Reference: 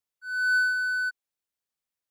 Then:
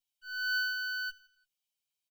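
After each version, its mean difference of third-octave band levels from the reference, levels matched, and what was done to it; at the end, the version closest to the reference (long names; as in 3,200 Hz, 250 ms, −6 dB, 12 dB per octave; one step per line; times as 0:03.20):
4.5 dB: lower of the sound and its delayed copy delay 1.3 ms
high shelf with overshoot 2,200 Hz +7.5 dB, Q 3
comb filter 7.3 ms, depth 92%
on a send: repeating echo 85 ms, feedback 53%, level −20 dB
on the sum: level −8.5 dB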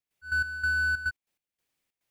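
6.0 dB: in parallel at −11 dB: decimation without filtering 31×
on the sum: downward compressor 3 to 1, threshold −34 dBFS, peak gain reduction 11 dB
gate pattern ".x.x..xxx" 142 BPM −12 dB
parametric band 2,400 Hz +6.5 dB 0.78 octaves
level +6.5 dB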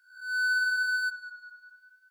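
1.5 dB: peak hold with a rise ahead of every peak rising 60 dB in 0.54 s
high-pass filter 1,500 Hz 24 dB per octave
downward compressor, threshold −28 dBFS, peak gain reduction 5 dB
on a send: tape delay 198 ms, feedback 63%, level −11.5 dB, low-pass 4,100 Hz
on the sum: level +3.5 dB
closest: third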